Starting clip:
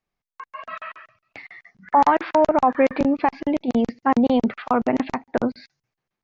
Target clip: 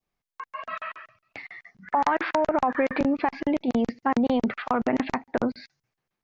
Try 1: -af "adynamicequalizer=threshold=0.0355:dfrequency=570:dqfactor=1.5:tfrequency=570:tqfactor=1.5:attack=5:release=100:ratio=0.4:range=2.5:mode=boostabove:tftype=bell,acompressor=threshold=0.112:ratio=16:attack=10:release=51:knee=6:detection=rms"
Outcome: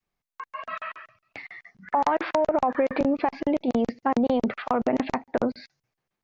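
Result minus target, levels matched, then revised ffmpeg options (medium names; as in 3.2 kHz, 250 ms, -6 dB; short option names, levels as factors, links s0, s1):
2 kHz band -3.5 dB
-af "adynamicequalizer=threshold=0.0355:dfrequency=1700:dqfactor=1.5:tfrequency=1700:tqfactor=1.5:attack=5:release=100:ratio=0.4:range=2.5:mode=boostabove:tftype=bell,acompressor=threshold=0.112:ratio=16:attack=10:release=51:knee=6:detection=rms"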